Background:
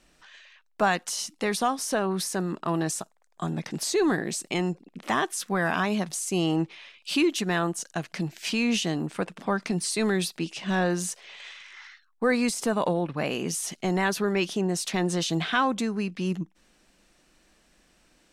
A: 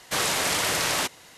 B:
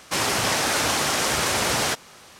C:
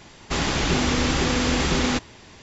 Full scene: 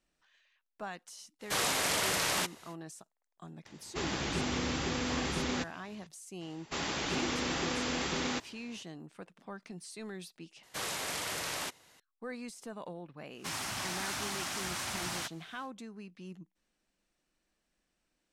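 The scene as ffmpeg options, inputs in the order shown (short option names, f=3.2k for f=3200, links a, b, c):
-filter_complex "[1:a]asplit=2[a][b];[3:a]asplit=2[c][d];[0:a]volume=-18.5dB[e];[c]highpass=70[f];[d]highpass=f=240:p=1[g];[2:a]equalizer=f=460:w=2.4:g=-13.5[h];[e]asplit=2[i][j];[i]atrim=end=10.634[k];[b]atrim=end=1.37,asetpts=PTS-STARTPTS,volume=-12dB[l];[j]atrim=start=11.996[m];[a]atrim=end=1.37,asetpts=PTS-STARTPTS,volume=-6dB,afade=t=in:d=0.05,afade=t=out:st=1.32:d=0.05,adelay=1390[n];[f]atrim=end=2.42,asetpts=PTS-STARTPTS,volume=-11.5dB,afade=t=in:d=0.004:c=hsin,afade=t=out:st=2.416:d=0.004:c=hsin,adelay=160965S[o];[g]atrim=end=2.42,asetpts=PTS-STARTPTS,volume=-10dB,afade=t=in:d=0.004:c=hsin,afade=t=out:st=2.416:d=0.004:c=hsin,adelay=6410[p];[h]atrim=end=2.39,asetpts=PTS-STARTPTS,volume=-14dB,afade=t=in:d=0.1,afade=t=out:st=2.29:d=0.1,adelay=13330[q];[k][l]acrossfade=d=0.004:c1=hsin:c2=hsin[r];[r][m]acrossfade=d=0.004:c1=hsin:c2=hsin[s];[s][n][o][p][q]amix=inputs=5:normalize=0"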